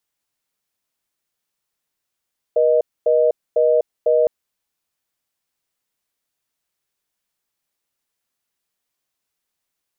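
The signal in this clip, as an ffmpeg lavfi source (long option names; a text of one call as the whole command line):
ffmpeg -f lavfi -i "aevalsrc='0.178*(sin(2*PI*480*t)+sin(2*PI*620*t))*clip(min(mod(t,0.5),0.25-mod(t,0.5))/0.005,0,1)':duration=1.71:sample_rate=44100" out.wav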